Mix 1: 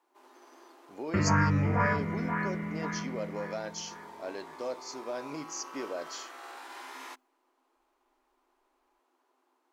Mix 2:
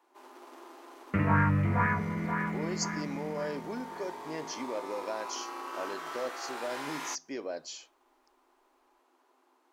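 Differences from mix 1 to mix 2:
speech: entry +1.55 s
first sound +5.5 dB

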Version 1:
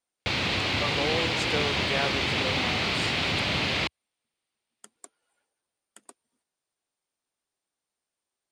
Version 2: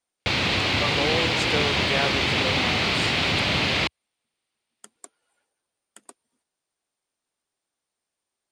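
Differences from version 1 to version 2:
speech +3.0 dB
background +4.0 dB

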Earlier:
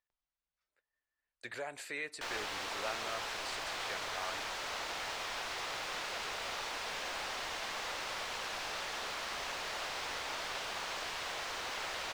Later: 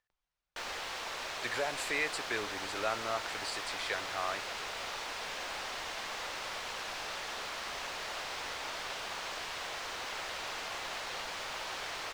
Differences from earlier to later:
speech +7.0 dB
background: entry −1.65 s

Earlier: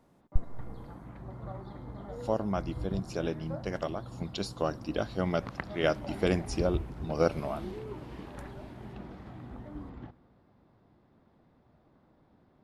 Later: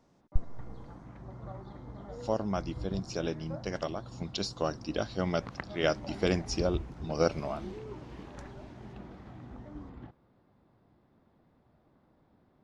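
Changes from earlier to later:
speech: add low-pass with resonance 5,800 Hz, resonance Q 2.2
reverb: off

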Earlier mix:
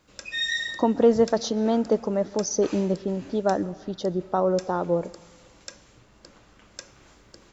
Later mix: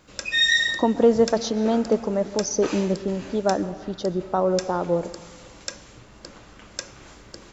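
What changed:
speech: send +7.0 dB
background +8.0 dB

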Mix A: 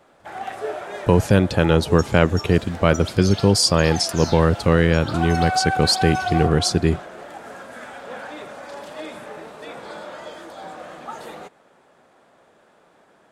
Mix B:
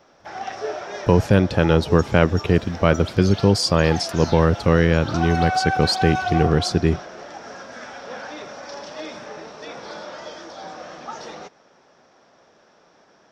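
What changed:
first sound: add low-pass with resonance 5,600 Hz, resonance Q 12
master: add parametric band 10,000 Hz −10.5 dB 1.3 octaves

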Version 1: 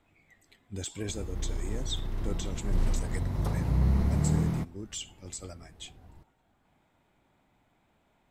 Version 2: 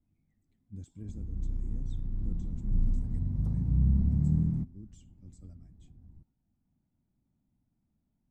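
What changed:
speech −4.0 dB
master: add drawn EQ curve 240 Hz 0 dB, 430 Hz −17 dB, 3,000 Hz −27 dB, 6,800 Hz −21 dB, 12,000 Hz −24 dB

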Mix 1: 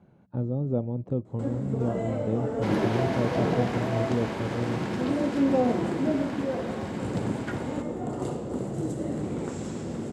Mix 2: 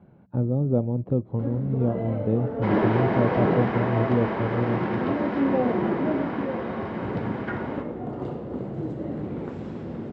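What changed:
speech +5.0 dB
second sound: send +11.0 dB
master: add high-frequency loss of the air 300 metres

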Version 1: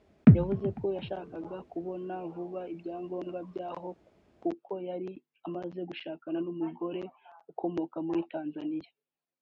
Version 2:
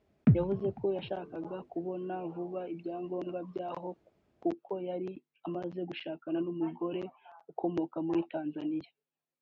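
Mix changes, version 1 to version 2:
background −8.0 dB
master: add parametric band 130 Hz +4.5 dB 0.48 octaves

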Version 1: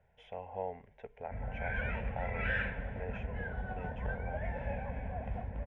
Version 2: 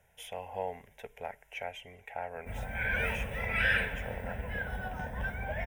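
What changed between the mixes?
background: entry +1.15 s
master: remove head-to-tape spacing loss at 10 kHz 40 dB

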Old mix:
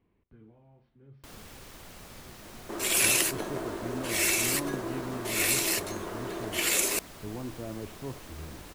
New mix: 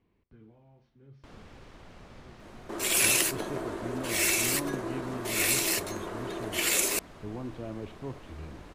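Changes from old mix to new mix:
speech: remove moving average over 6 samples
first sound: add head-to-tape spacing loss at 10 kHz 21 dB

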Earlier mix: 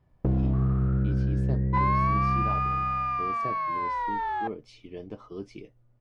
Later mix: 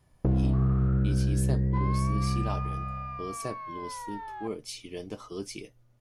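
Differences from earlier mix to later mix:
speech: remove head-to-tape spacing loss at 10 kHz 30 dB
second sound −10.5 dB

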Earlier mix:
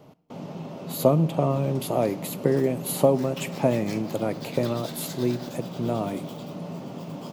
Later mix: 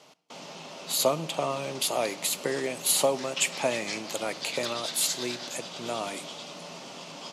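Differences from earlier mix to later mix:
background: add high-frequency loss of the air 94 metres
master: add meter weighting curve ITU-R 468

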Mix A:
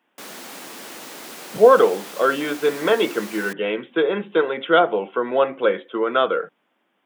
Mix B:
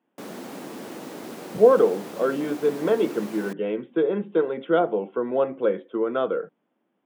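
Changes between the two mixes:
speech −7.0 dB
master: add tilt shelving filter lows +9 dB, about 810 Hz

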